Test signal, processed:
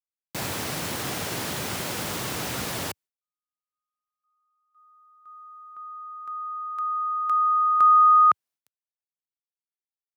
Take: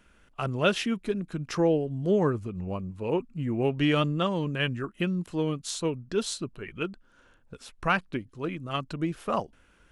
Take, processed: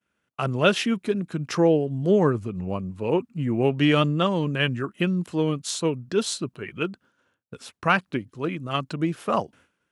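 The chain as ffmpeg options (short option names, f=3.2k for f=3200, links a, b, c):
-af "highpass=f=91:w=0.5412,highpass=f=91:w=1.3066,agate=range=-33dB:threshold=-51dB:ratio=3:detection=peak,volume=4.5dB"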